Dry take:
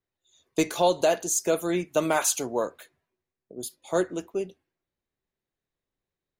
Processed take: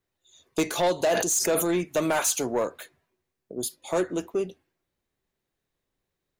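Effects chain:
in parallel at 0 dB: downward compressor, threshold −30 dBFS, peak gain reduction 12.5 dB
on the sum: soft clipping −17.5 dBFS, distortion −13 dB
0:01.08–0:01.65: level that may fall only so fast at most 38 dB per second

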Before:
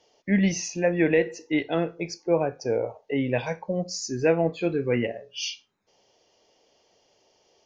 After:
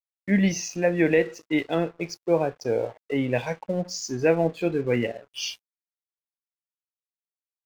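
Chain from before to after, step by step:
dead-zone distortion −48 dBFS
level +1 dB

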